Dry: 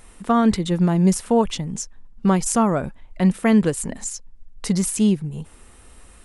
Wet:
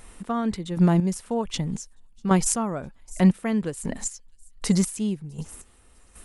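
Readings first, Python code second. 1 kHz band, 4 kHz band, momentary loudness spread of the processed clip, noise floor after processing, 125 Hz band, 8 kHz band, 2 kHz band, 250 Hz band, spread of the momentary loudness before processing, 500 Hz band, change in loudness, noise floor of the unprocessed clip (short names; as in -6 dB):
-6.5 dB, -4.0 dB, 15 LU, -55 dBFS, -2.5 dB, -3.0 dB, -5.0 dB, -5.0 dB, 15 LU, -6.5 dB, -4.5 dB, -48 dBFS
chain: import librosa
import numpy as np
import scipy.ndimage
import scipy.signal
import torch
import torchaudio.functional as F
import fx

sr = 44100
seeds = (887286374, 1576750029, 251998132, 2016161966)

y = fx.echo_wet_highpass(x, sr, ms=653, feedback_pct=43, hz=5100.0, wet_db=-18.0)
y = fx.chopper(y, sr, hz=1.3, depth_pct=65, duty_pct=30)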